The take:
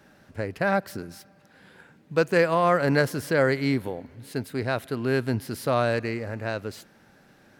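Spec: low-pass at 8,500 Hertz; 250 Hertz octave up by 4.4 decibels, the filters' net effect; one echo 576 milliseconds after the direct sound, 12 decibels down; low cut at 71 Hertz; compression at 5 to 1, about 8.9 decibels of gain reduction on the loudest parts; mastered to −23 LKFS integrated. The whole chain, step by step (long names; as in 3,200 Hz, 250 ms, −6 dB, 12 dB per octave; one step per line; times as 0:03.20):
high-pass filter 71 Hz
low-pass filter 8,500 Hz
parametric band 250 Hz +5.5 dB
downward compressor 5 to 1, threshold −25 dBFS
single-tap delay 576 ms −12 dB
level +8 dB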